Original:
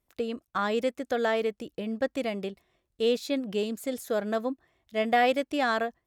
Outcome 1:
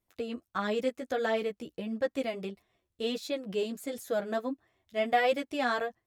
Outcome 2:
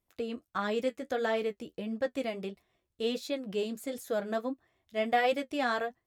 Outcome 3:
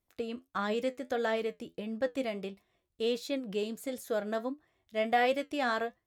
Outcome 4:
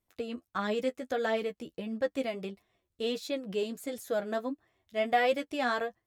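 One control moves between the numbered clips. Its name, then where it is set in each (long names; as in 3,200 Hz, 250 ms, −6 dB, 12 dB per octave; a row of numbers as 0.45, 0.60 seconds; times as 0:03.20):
flanger, regen: −5, −40, +63, +23%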